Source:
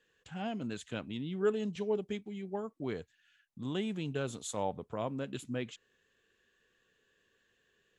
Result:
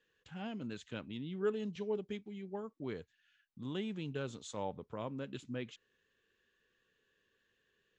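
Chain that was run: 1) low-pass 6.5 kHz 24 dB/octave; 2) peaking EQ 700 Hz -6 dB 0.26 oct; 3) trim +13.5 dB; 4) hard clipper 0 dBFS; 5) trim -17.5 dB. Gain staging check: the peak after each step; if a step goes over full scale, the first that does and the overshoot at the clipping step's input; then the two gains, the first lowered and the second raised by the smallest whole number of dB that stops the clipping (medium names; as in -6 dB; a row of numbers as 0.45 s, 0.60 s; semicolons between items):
-19.5 dBFS, -19.5 dBFS, -6.0 dBFS, -6.0 dBFS, -23.5 dBFS; nothing clips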